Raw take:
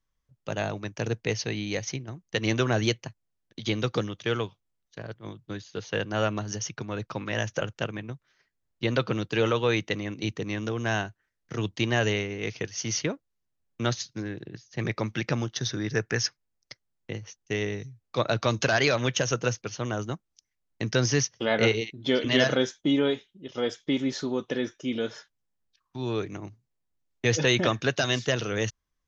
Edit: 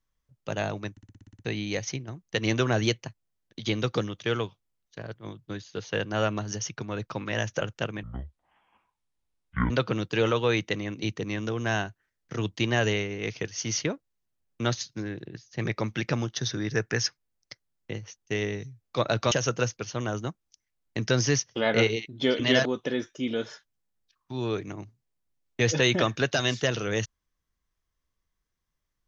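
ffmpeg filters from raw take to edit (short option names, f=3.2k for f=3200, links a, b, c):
-filter_complex "[0:a]asplit=14[a][b][c][d][e][f][g][h][i][j][k][l][m][n];[a]atrim=end=0.972[o];[b]atrim=start=0.908:end=0.972[p];[c]atrim=start=0.908:end=0.972[q];[d]atrim=start=0.908:end=0.972[r];[e]atrim=start=0.908:end=0.972[s];[f]atrim=start=0.908:end=0.972[t];[g]atrim=start=0.908:end=0.972[u];[h]atrim=start=0.908:end=0.972[v];[i]atrim=start=0.908:end=0.972[w];[j]atrim=start=1.448:end=8.034[x];[k]atrim=start=8.03:end=8.9,asetpts=PTS-STARTPTS,asetrate=22932,aresample=44100[y];[l]atrim=start=8.896:end=18.512[z];[m]atrim=start=19.158:end=22.502[aa];[n]atrim=start=24.298[ab];[o][p]acrossfade=d=0.004:c1=hsin:c2=hsin[ac];[ac][q]acrossfade=d=0.004:c1=hsin:c2=hsin[ad];[ad][r]acrossfade=d=0.004:c1=hsin:c2=hsin[ae];[ae][s]acrossfade=d=0.004:c1=hsin:c2=hsin[af];[af][t]acrossfade=d=0.004:c1=hsin:c2=hsin[ag];[ag][u]acrossfade=d=0.004:c1=hsin:c2=hsin[ah];[ah][v]acrossfade=d=0.004:c1=hsin:c2=hsin[ai];[ai][w]acrossfade=d=0.004:c1=hsin:c2=hsin[aj];[aj][x]acrossfade=d=0.004:c1=hsin:c2=hsin[ak];[ak][y]acrossfade=d=0.004:c1=hsin:c2=hsin[al];[al][z]acrossfade=d=0.004:c1=hsin:c2=hsin[am];[am][aa]acrossfade=d=0.004:c1=hsin:c2=hsin[an];[an][ab]acrossfade=d=0.004:c1=hsin:c2=hsin"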